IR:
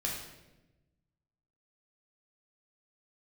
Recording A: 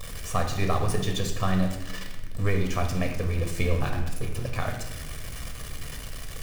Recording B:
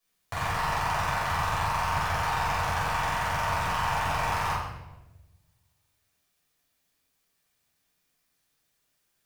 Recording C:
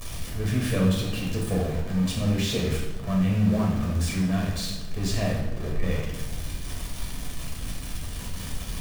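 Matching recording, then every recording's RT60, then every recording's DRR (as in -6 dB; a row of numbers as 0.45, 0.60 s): C; 1.0, 1.0, 1.0 s; 3.0, -9.5, -3.0 dB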